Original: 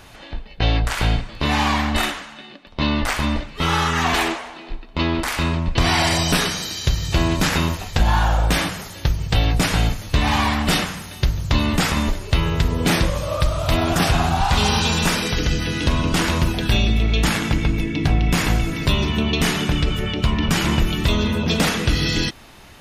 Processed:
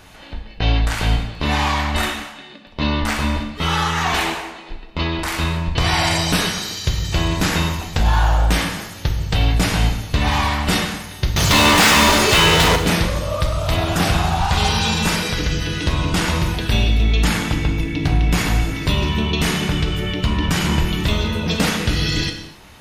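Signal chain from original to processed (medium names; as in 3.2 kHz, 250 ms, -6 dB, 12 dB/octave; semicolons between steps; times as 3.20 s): 11.36–12.76 s: overdrive pedal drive 35 dB, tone 6.7 kHz, clips at -6.5 dBFS; gated-style reverb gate 300 ms falling, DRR 4.5 dB; trim -1 dB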